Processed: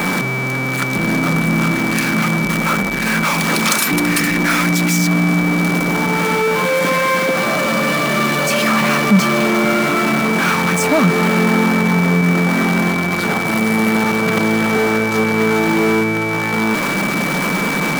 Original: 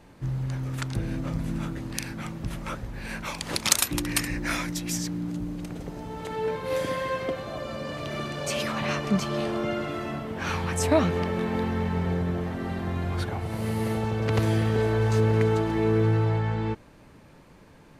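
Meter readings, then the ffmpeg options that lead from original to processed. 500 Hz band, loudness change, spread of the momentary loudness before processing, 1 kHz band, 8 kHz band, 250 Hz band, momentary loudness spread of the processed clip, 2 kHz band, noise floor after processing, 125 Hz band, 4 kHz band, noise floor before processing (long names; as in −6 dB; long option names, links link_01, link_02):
+10.0 dB, +12.5 dB, 12 LU, +15.0 dB, +9.0 dB, +14.0 dB, 3 LU, +19.5 dB, −19 dBFS, +7.0 dB, +11.5 dB, −52 dBFS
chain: -af "aeval=exprs='val(0)+0.5*0.126*sgn(val(0))':channel_layout=same,equalizer=frequency=1300:width_type=o:width=0.94:gain=6.5,acontrast=88,aeval=exprs='val(0)+0.158*sin(2*PI*2300*n/s)':channel_layout=same,lowshelf=frequency=130:width_type=q:width=3:gain=-12,volume=-5dB"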